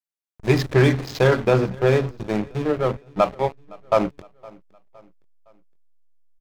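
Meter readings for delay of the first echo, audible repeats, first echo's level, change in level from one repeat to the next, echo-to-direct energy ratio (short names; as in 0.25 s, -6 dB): 0.513 s, 2, -24.0 dB, -7.0 dB, -23.0 dB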